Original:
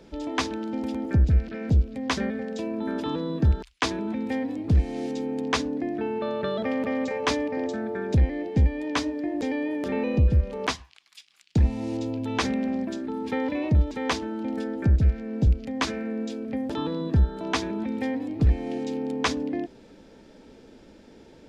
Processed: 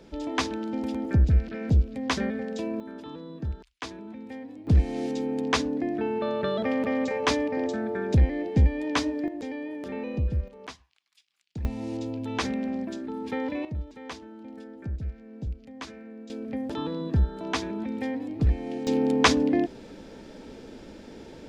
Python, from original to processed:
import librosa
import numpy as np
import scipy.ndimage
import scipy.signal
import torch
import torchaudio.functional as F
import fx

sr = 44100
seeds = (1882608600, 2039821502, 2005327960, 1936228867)

y = fx.gain(x, sr, db=fx.steps((0.0, -0.5), (2.8, -11.5), (4.67, 0.5), (9.28, -7.0), (10.48, -14.5), (11.65, -3.0), (13.65, -13.0), (16.3, -2.5), (18.87, 6.0)))